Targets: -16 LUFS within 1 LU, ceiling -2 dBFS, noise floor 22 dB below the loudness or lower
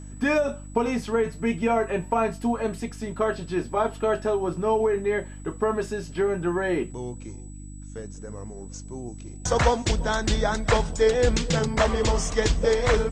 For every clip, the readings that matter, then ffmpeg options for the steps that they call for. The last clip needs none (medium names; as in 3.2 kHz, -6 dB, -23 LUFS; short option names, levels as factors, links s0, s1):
hum 50 Hz; highest harmonic 300 Hz; hum level -38 dBFS; steady tone 7.9 kHz; tone level -50 dBFS; loudness -25.0 LUFS; peak level -7.5 dBFS; loudness target -16.0 LUFS
-> -af "bandreject=f=50:t=h:w=4,bandreject=f=100:t=h:w=4,bandreject=f=150:t=h:w=4,bandreject=f=200:t=h:w=4,bandreject=f=250:t=h:w=4,bandreject=f=300:t=h:w=4"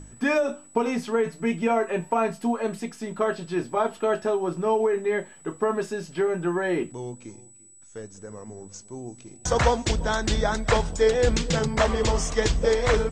hum not found; steady tone 7.9 kHz; tone level -50 dBFS
-> -af "bandreject=f=7900:w=30"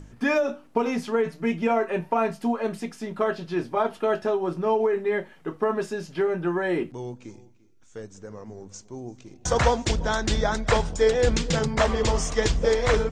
steady tone not found; loudness -25.0 LUFS; peak level -7.5 dBFS; loudness target -16.0 LUFS
-> -af "volume=2.82,alimiter=limit=0.794:level=0:latency=1"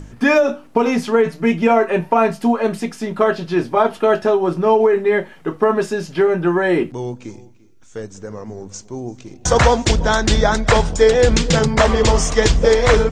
loudness -16.5 LUFS; peak level -2.0 dBFS; noise floor -44 dBFS